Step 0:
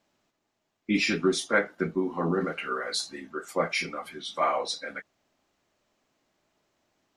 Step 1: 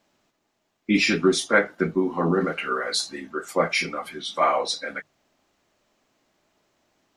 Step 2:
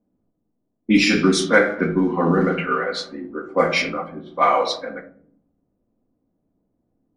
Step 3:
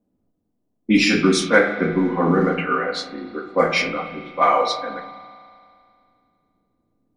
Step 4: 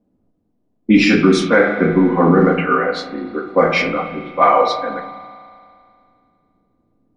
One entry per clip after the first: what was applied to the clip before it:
notches 50/100/150 Hz; gain +5 dB
shoebox room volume 2000 m³, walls furnished, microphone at 1.9 m; low-pass opened by the level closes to 320 Hz, open at -15 dBFS; gain +2.5 dB
spring tank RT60 2.4 s, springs 34 ms, chirp 75 ms, DRR 10 dB
LPF 2000 Hz 6 dB/oct; maximiser +7.5 dB; gain -1 dB

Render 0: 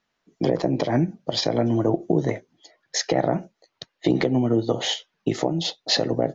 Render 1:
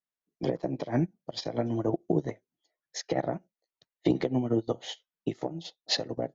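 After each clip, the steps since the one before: upward expander 2.5:1, over -32 dBFS; gain -2.5 dB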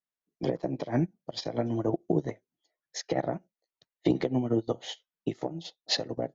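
nothing audible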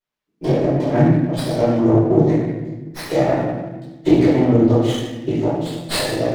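reverb RT60 1.2 s, pre-delay 3 ms, DRR -12.5 dB; running maximum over 5 samples; gain -1 dB

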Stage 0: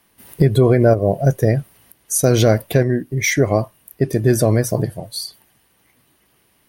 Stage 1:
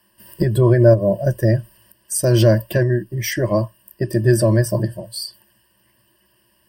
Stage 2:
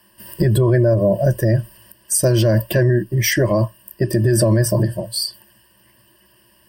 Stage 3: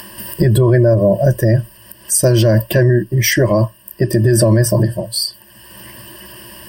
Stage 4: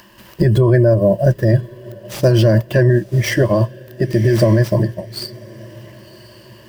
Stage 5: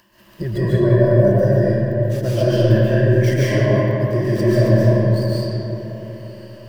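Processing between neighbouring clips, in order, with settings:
ripple EQ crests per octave 1.3, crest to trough 16 dB; gain -4.5 dB
limiter -13 dBFS, peak gain reduction 11.5 dB; gain +6 dB
upward compressor, threshold -25 dBFS; gain +3.5 dB
median filter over 5 samples; diffused feedback echo 1.071 s, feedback 41%, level -15 dB; upward expander 1.5:1, over -26 dBFS
digital reverb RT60 3.7 s, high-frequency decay 0.45×, pre-delay 0.1 s, DRR -9.5 dB; gain -11.5 dB

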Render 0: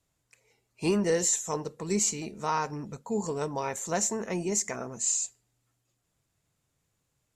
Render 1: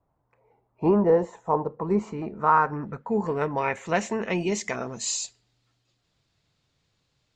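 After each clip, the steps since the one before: low-pass sweep 910 Hz -> 4300 Hz, 1.65–5.13; gain +4.5 dB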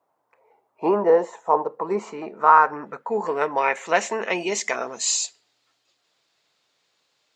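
HPF 470 Hz 12 dB/oct; gain +6 dB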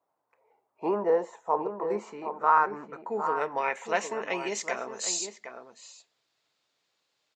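outdoor echo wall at 130 m, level -8 dB; gain -7.5 dB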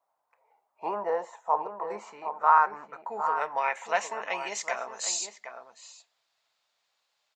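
resonant low shelf 510 Hz -9.5 dB, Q 1.5

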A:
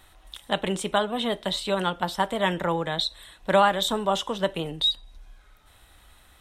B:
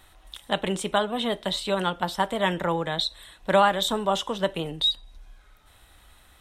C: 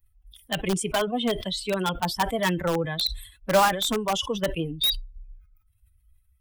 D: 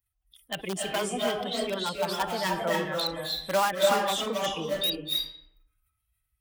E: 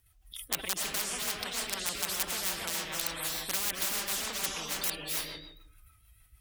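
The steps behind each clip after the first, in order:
nothing audible
per-bin expansion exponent 2; in parallel at -4 dB: wrapped overs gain 22 dB; on the sum: sustainer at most 110 dB/s; gain +1.5 dB
HPF 260 Hz 6 dB/oct; reverb RT60 0.75 s, pre-delay 0.235 s, DRR -1 dB; gain -5 dB
in parallel at +0.5 dB: compressor, threshold -33 dBFS, peak gain reduction 15 dB; on the sum: rotary speaker horn 6.7 Hz; spectral compressor 10:1

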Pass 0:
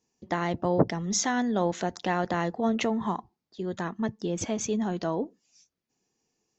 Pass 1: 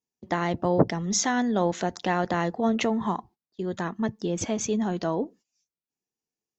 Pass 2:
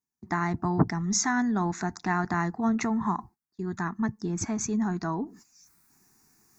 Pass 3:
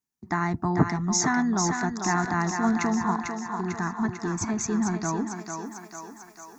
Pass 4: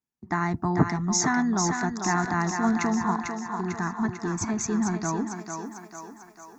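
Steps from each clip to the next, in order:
gate -51 dBFS, range -18 dB; gain +2 dB
reverse; upward compressor, threshold -39 dBFS; reverse; fixed phaser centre 1300 Hz, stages 4; gain +2 dB
thinning echo 0.447 s, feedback 62%, high-pass 320 Hz, level -4.5 dB; gain +1.5 dB
mismatched tape noise reduction decoder only

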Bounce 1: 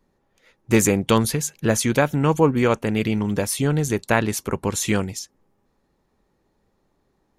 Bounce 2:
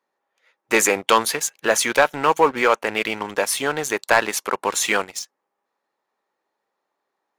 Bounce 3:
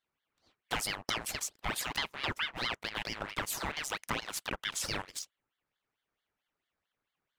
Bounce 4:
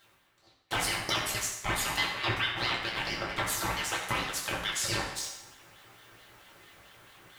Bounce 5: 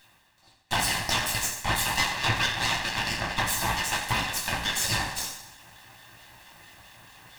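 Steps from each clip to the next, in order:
HPF 760 Hz 12 dB/oct; high shelf 3600 Hz -9.5 dB; sample leveller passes 2; gain +3 dB
compressor 6:1, threshold -22 dBFS, peak gain reduction 11.5 dB; ring modulator with a swept carrier 1500 Hz, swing 75%, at 4.5 Hz; gain -6.5 dB
reverse; upward compressor, threshold -37 dBFS; reverse; reverb RT60 0.95 s, pre-delay 4 ms, DRR -3.5 dB
minimum comb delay 1.1 ms; gain +6 dB

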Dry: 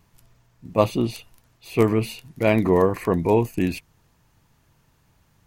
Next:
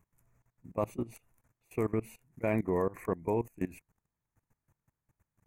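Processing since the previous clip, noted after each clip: level quantiser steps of 20 dB; band shelf 3900 Hz -16 dB 1.1 oct; gain -8.5 dB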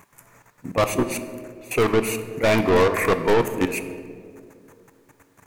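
overdrive pedal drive 28 dB, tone 7100 Hz, clips at -16.5 dBFS; on a send at -9 dB: reverb RT60 2.3 s, pre-delay 4 ms; on the sum: gain +6 dB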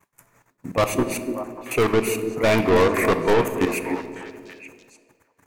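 expander -46 dBFS; delay with a stepping band-pass 0.294 s, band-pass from 300 Hz, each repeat 1.4 oct, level -5 dB

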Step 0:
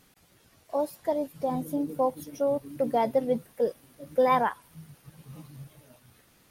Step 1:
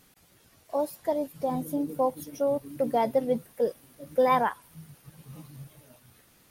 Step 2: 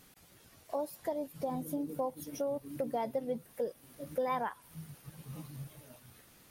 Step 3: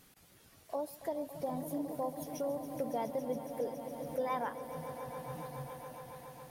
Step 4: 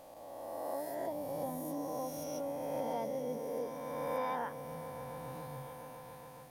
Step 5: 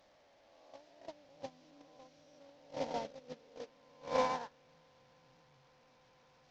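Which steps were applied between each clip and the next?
high shelf 8100 Hz +4 dB
compressor 2.5:1, threshold -36 dBFS, peak gain reduction 11.5 dB
swelling echo 0.139 s, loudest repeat 5, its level -14 dB; gain -2 dB
spectral swells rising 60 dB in 2.36 s; gain -5 dB
delta modulation 32 kbps, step -38 dBFS; gate -33 dBFS, range -33 dB; gain +10 dB

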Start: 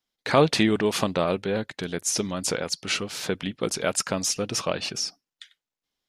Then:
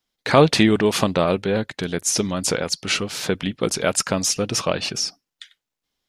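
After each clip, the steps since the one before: low shelf 130 Hz +4 dB; gain +4.5 dB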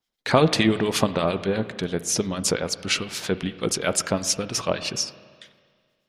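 harmonic tremolo 8.7 Hz, depth 70%, crossover 1300 Hz; spring tank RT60 1.9 s, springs 35/54 ms, chirp 65 ms, DRR 13 dB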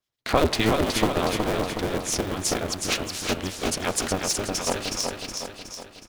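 cycle switcher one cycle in 2, inverted; on a send: feedback echo 0.368 s, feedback 52%, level -4.5 dB; on the sum: gain -3 dB

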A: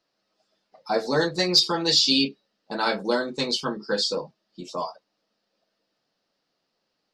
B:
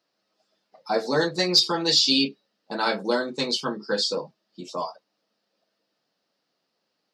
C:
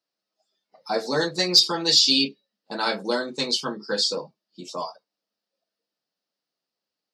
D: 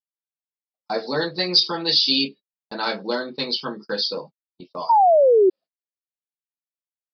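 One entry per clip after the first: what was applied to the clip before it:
HPF 120 Hz
spectral noise reduction 11 dB; high shelf 4100 Hz +7 dB; gain -1.5 dB
downsampling 11025 Hz; painted sound fall, 4.89–5.5, 360–960 Hz -14 dBFS; gate -38 dBFS, range -45 dB

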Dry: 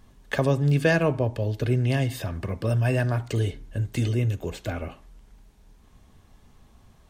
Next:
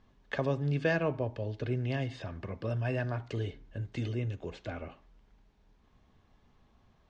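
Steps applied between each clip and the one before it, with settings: Bessel low-pass 4000 Hz, order 8; low shelf 160 Hz -5 dB; gain -7 dB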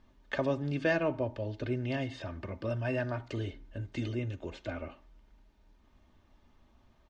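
comb 3.3 ms, depth 45%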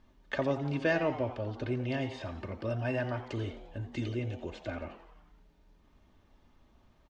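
frequency-shifting echo 87 ms, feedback 57%, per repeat +130 Hz, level -14.5 dB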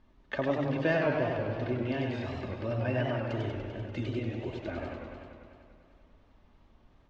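air absorption 94 m; warbling echo 98 ms, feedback 76%, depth 151 cents, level -5 dB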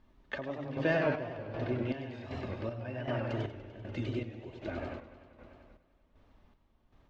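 chopper 1.3 Hz, depth 60%, duty 50%; gain -1.5 dB

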